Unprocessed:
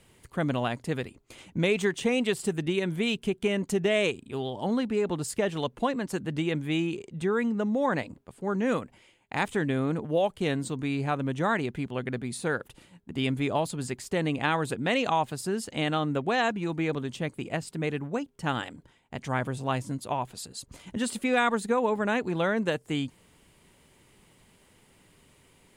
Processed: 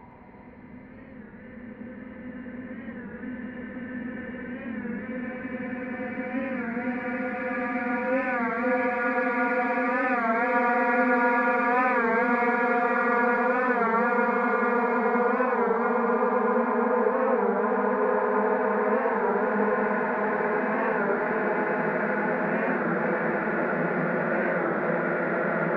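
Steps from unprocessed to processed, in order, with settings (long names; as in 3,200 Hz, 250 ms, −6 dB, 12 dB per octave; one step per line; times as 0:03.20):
Chebyshev low-pass filter 2,200 Hz, order 5
low-shelf EQ 350 Hz −6.5 dB
in parallel at −12 dB: soft clipping −23.5 dBFS, distortion −15 dB
on the sum: extreme stretch with random phases 14×, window 1.00 s, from 0:20.59
on a send: echo with a time of its own for lows and highs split 560 Hz, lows 185 ms, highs 113 ms, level −6 dB
on the sum: wow of a warped record 33 1/3 rpm, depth 100 cents
level +1.5 dB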